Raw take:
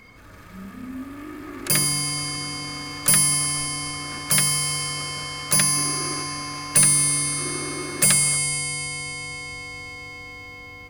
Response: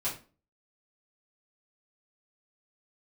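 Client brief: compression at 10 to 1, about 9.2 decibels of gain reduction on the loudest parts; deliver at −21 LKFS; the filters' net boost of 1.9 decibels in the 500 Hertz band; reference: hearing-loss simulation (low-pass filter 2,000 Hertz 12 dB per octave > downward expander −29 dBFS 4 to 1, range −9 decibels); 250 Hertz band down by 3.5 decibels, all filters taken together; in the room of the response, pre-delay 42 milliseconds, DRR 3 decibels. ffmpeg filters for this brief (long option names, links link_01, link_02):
-filter_complex "[0:a]equalizer=frequency=250:width_type=o:gain=-7,equalizer=frequency=500:width_type=o:gain=4.5,acompressor=threshold=-22dB:ratio=10,asplit=2[link_01][link_02];[1:a]atrim=start_sample=2205,adelay=42[link_03];[link_02][link_03]afir=irnorm=-1:irlink=0,volume=-8dB[link_04];[link_01][link_04]amix=inputs=2:normalize=0,lowpass=2000,agate=range=-9dB:threshold=-29dB:ratio=4,volume=10.5dB"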